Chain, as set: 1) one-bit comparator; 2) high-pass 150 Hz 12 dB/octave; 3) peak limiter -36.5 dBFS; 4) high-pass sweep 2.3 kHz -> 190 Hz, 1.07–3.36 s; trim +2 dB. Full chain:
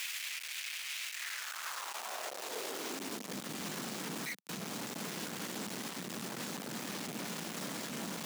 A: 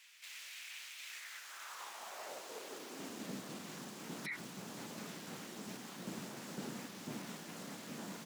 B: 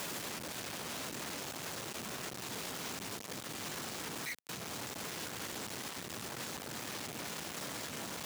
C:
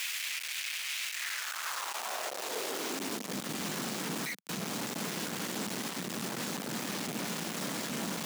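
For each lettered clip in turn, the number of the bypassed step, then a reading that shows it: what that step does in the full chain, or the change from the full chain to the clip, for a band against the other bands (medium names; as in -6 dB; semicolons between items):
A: 1, crest factor change +3.0 dB; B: 4, crest factor change -5.0 dB; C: 3, mean gain reduction 4.5 dB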